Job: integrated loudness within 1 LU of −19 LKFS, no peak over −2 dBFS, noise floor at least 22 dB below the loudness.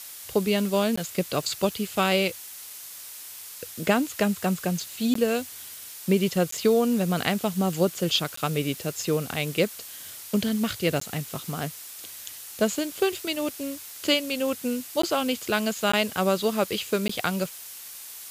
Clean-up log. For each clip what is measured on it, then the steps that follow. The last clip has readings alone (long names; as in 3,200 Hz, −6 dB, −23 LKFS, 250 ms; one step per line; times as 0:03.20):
number of dropouts 8; longest dropout 14 ms; background noise floor −42 dBFS; target noise floor −48 dBFS; integrated loudness −26.0 LKFS; sample peak −7.0 dBFS; target loudness −19.0 LKFS
→ repair the gap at 0:00.96/0:05.14/0:06.51/0:08.36/0:11.00/0:15.02/0:15.92/0:17.08, 14 ms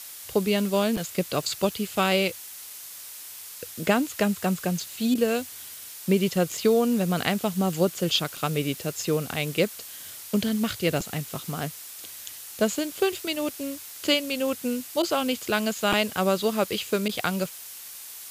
number of dropouts 0; background noise floor −41 dBFS; target noise floor −48 dBFS
→ broadband denoise 7 dB, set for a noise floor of −41 dBFS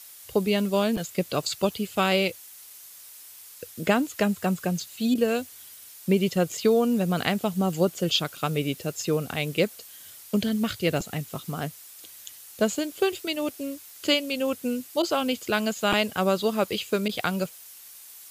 background noise floor −47 dBFS; target noise floor −48 dBFS
→ broadband denoise 6 dB, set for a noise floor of −47 dBFS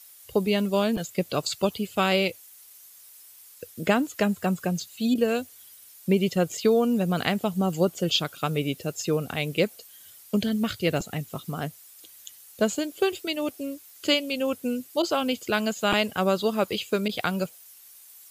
background noise floor −50 dBFS; integrated loudness −26.5 LKFS; sample peak −7.0 dBFS; target loudness −19.0 LKFS
→ level +7.5 dB
brickwall limiter −2 dBFS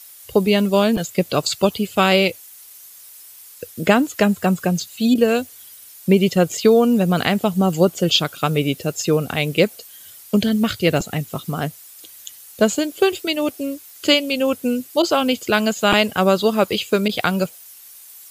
integrated loudness −19.0 LKFS; sample peak −2.0 dBFS; background noise floor −43 dBFS